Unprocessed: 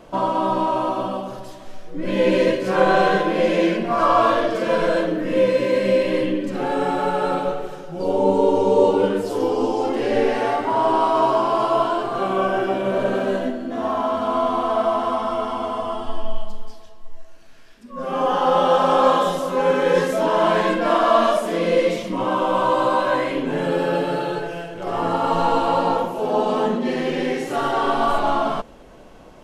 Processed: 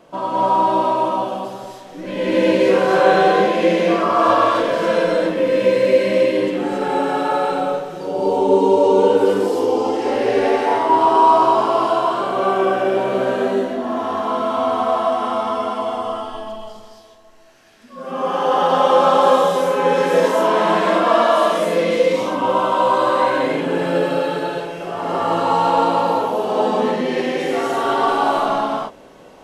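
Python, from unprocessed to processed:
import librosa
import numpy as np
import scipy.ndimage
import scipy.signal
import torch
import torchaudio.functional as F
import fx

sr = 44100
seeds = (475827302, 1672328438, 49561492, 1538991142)

y = fx.highpass(x, sr, hz=170.0, slope=6)
y = fx.rev_gated(y, sr, seeds[0], gate_ms=300, shape='rising', drr_db=-5.0)
y = F.gain(torch.from_numpy(y), -3.0).numpy()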